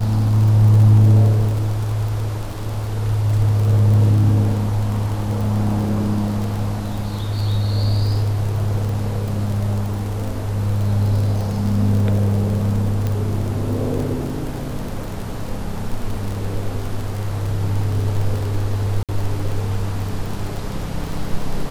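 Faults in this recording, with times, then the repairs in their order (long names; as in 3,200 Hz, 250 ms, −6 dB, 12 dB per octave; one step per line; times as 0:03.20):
surface crackle 30 per second −23 dBFS
0:13.07: click −11 dBFS
0:19.03–0:19.09: drop-out 57 ms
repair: click removal
repair the gap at 0:19.03, 57 ms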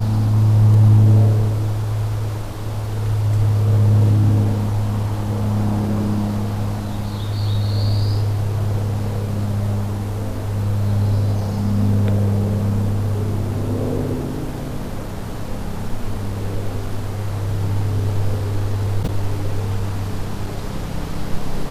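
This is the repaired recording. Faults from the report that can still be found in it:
none of them is left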